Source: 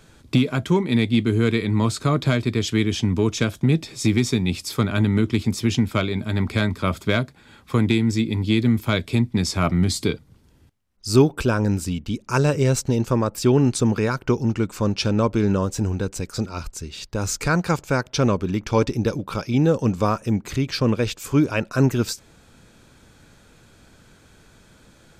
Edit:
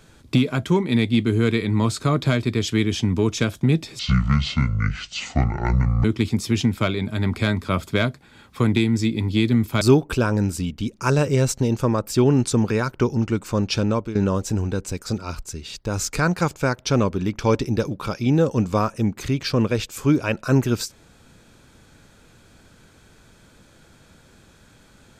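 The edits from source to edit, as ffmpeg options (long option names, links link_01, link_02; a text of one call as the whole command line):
ffmpeg -i in.wav -filter_complex "[0:a]asplit=5[link_01][link_02][link_03][link_04][link_05];[link_01]atrim=end=3.994[link_06];[link_02]atrim=start=3.99:end=5.18,asetpts=PTS-STARTPTS,asetrate=25578,aresample=44100,atrim=end_sample=90481,asetpts=PTS-STARTPTS[link_07];[link_03]atrim=start=5.176:end=8.952[link_08];[link_04]atrim=start=11.088:end=15.43,asetpts=PTS-STARTPTS,afade=type=out:start_time=4.042:duration=0.3:silence=0.223872[link_09];[link_05]atrim=start=15.43,asetpts=PTS-STARTPTS,afade=type=in:duration=0.004:curve=hsin:silence=0.223872[link_10];[link_06][link_07]acrossfade=duration=0.004:curve1=hsin:curve2=hsin[link_11];[link_11][link_08]acrossfade=duration=0.004:curve1=hsin:curve2=hsin[link_12];[link_09][link_10]concat=n=2:v=0:a=1[link_13];[link_12][link_13]acrossfade=duration=0.004:curve1=hsin:curve2=hsin" out.wav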